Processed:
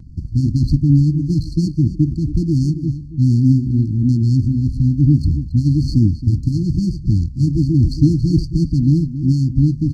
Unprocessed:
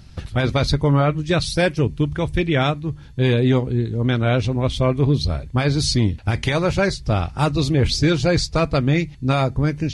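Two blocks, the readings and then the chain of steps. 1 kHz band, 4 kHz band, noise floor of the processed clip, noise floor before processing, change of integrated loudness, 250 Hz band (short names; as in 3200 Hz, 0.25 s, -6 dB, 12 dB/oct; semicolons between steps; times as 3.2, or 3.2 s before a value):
under -40 dB, under -10 dB, -31 dBFS, -40 dBFS, +3.5 dB, +5.0 dB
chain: median filter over 25 samples; brick-wall FIR band-stop 340–4200 Hz; air absorption 69 m; outdoor echo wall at 47 m, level -12 dB; vibrato 1.2 Hz 25 cents; gain +5.5 dB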